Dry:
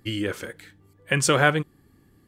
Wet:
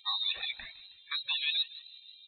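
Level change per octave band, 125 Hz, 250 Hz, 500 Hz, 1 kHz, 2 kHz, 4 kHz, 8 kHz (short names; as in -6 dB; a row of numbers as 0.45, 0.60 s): under -40 dB, under -40 dB, under -35 dB, -18.5 dB, -14.0 dB, +2.5 dB, under -40 dB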